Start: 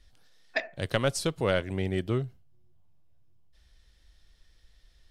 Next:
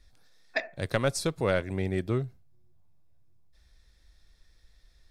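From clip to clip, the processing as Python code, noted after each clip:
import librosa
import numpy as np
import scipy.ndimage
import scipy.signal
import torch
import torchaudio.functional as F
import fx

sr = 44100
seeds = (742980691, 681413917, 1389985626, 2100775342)

y = fx.notch(x, sr, hz=3000.0, q=5.3)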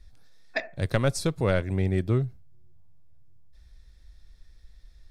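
y = fx.low_shelf(x, sr, hz=170.0, db=9.5)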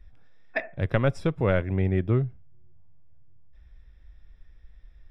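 y = scipy.signal.savgol_filter(x, 25, 4, mode='constant')
y = y * 10.0 ** (1.0 / 20.0)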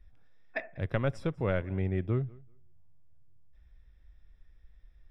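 y = fx.echo_feedback(x, sr, ms=192, feedback_pct=17, wet_db=-24)
y = y * 10.0 ** (-6.5 / 20.0)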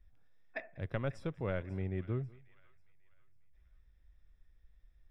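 y = fx.echo_wet_highpass(x, sr, ms=542, feedback_pct=37, hz=1500.0, wet_db=-16)
y = y * 10.0 ** (-6.5 / 20.0)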